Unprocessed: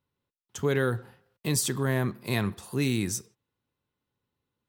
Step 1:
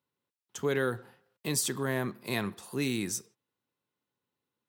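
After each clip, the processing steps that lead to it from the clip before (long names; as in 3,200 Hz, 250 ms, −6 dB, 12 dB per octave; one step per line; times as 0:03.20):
Bessel high-pass filter 200 Hz, order 2
level −2 dB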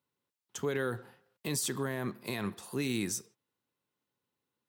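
brickwall limiter −23 dBFS, peak gain reduction 8 dB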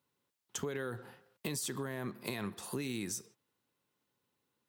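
downward compressor, threshold −39 dBFS, peak gain reduction 10.5 dB
level +4 dB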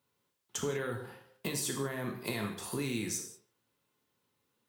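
reverb whose tail is shaped and stops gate 220 ms falling, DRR 2 dB
level +1.5 dB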